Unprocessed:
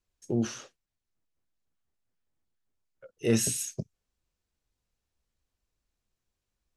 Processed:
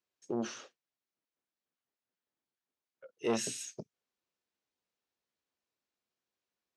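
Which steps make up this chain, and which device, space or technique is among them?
public-address speaker with an overloaded transformer (transformer saturation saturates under 470 Hz; band-pass 260–5700 Hz); trim -2.5 dB

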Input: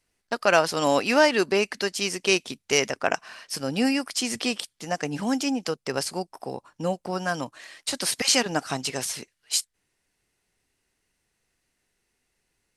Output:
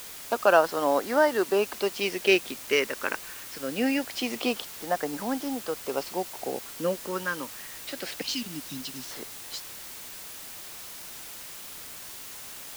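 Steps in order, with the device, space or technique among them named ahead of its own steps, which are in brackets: 8.21–9.11 s: inverse Chebyshev band-stop 580–1400 Hz, stop band 60 dB; shortwave radio (band-pass 300–2600 Hz; tremolo 0.45 Hz, depth 50%; LFO notch sine 0.24 Hz 700–2600 Hz; white noise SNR 12 dB); trim +4 dB

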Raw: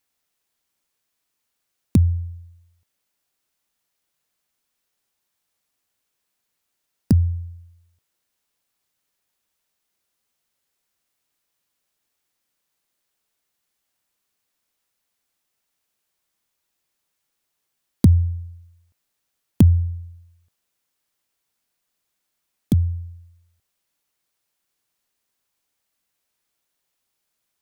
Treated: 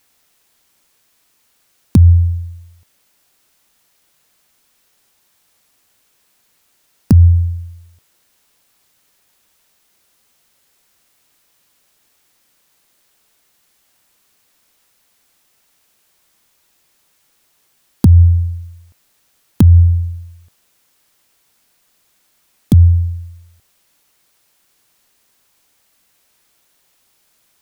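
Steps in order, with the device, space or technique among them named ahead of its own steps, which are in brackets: loud club master (compression 1.5:1, threshold -23 dBFS, peak gain reduction 5.5 dB; hard clipper -9.5 dBFS, distortion -29 dB; loudness maximiser +18 dB); trim -1 dB

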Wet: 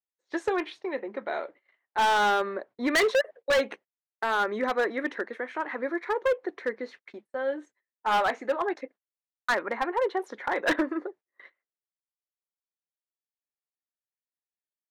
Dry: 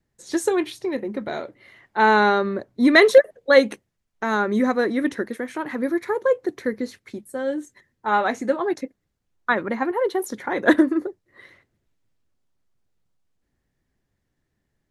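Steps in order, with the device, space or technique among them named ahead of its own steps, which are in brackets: walkie-talkie (band-pass 540–2600 Hz; hard clipper -19.5 dBFS, distortion -6 dB; gate -48 dBFS, range -25 dB)

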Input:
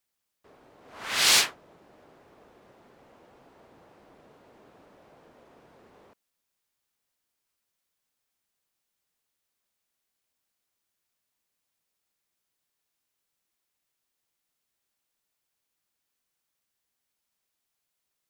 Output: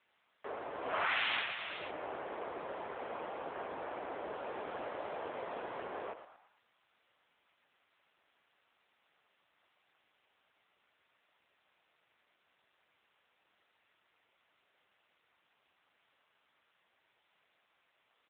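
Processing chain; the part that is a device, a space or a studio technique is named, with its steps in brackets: 4.36–5.84 s: peaking EQ 6.4 kHz +5.5 dB 1.7 oct; frequency-shifting echo 113 ms, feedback 42%, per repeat +120 Hz, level -11 dB; voicemail (band-pass 420–3000 Hz; compression 8:1, threshold -47 dBFS, peak gain reduction 24.5 dB; trim +17 dB; AMR-NB 7.95 kbps 8 kHz)

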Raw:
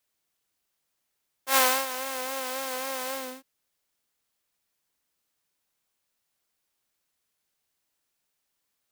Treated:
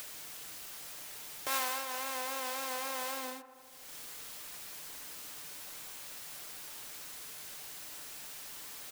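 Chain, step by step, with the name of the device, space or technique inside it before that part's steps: bass shelf 470 Hz -3 dB; upward and downward compression (upward compressor, threshold -38 dBFS; compression 3:1, threshold -50 dBFS, peak gain reduction 23.5 dB); comb 6.7 ms, depth 33%; feedback echo behind a low-pass 80 ms, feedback 77%, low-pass 1.4 kHz, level -14 dB; trim +10.5 dB

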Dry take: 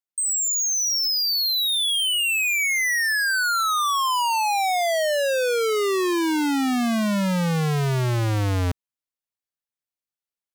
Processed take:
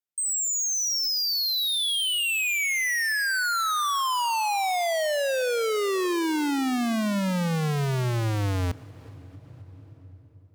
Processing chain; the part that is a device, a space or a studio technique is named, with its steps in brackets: compressed reverb return (on a send at -5 dB: reverberation RT60 3.0 s, pre-delay 70 ms + compression 10:1, threshold -32 dBFS, peak gain reduction 17.5 dB); on the sum: trim -3.5 dB

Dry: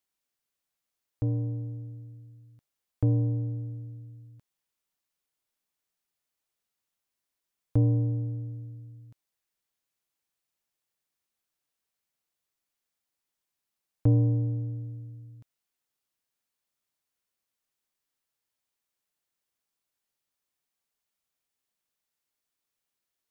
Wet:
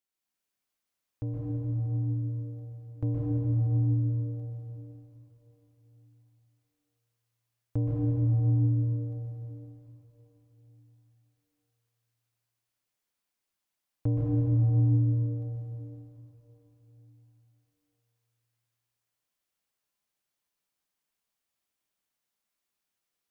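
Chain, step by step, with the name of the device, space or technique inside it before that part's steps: cathedral (reverberation RT60 4.3 s, pre-delay 116 ms, DRR -6.5 dB); trim -6 dB

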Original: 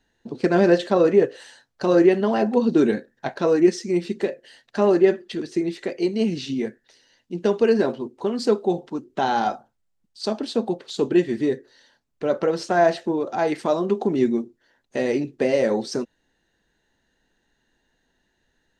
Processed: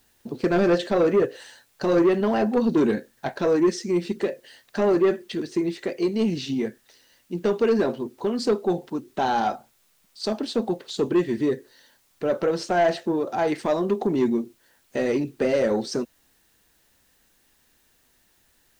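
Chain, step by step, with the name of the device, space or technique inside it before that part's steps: open-reel tape (saturation -13.5 dBFS, distortion -14 dB; peaking EQ 77 Hz +4.5 dB 1.13 oct; white noise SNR 40 dB)

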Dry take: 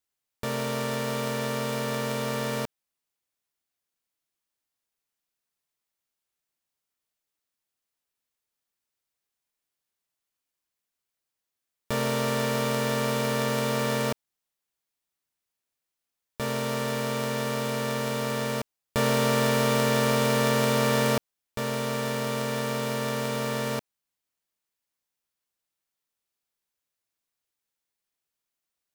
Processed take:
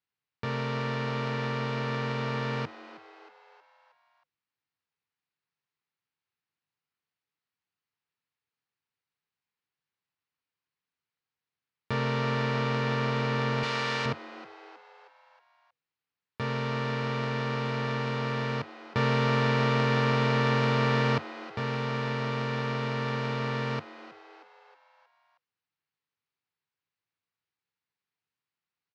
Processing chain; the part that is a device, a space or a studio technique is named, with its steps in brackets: frequency-shifting delay pedal into a guitar cabinet (frequency-shifting echo 316 ms, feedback 53%, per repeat +96 Hz, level -16 dB; cabinet simulation 97–4200 Hz, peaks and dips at 98 Hz +7 dB, 150 Hz +6 dB, 230 Hz -4 dB, 350 Hz -4 dB, 610 Hz -10 dB, 3.4 kHz -5 dB); 13.63–14.06 s: tilt EQ +3 dB/octave

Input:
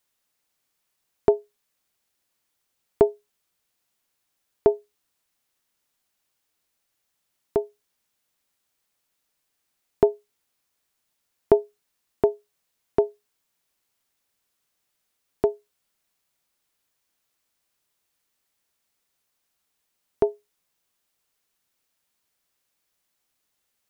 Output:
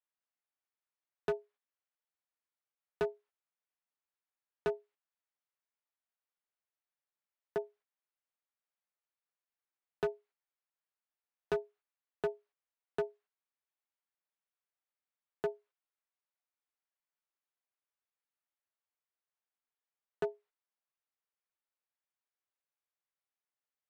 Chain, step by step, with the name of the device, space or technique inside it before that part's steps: walkie-talkie (band-pass 530–2200 Hz; hard clipper -22.5 dBFS, distortion -6 dB; gate -57 dBFS, range -10 dB); trim -5 dB

